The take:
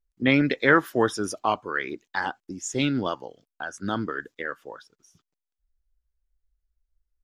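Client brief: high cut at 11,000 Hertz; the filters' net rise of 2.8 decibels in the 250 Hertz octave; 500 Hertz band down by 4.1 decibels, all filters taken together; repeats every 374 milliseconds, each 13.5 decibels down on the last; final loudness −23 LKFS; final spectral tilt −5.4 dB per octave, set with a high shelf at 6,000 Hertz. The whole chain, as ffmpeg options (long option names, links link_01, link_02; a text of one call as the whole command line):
ffmpeg -i in.wav -af "lowpass=11000,equalizer=frequency=250:width_type=o:gain=5.5,equalizer=frequency=500:width_type=o:gain=-7,highshelf=frequency=6000:gain=-5,aecho=1:1:374|748:0.211|0.0444,volume=2.5dB" out.wav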